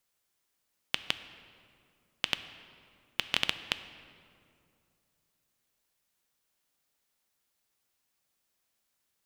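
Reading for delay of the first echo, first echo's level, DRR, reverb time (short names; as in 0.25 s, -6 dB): none, none, 11.0 dB, 2.5 s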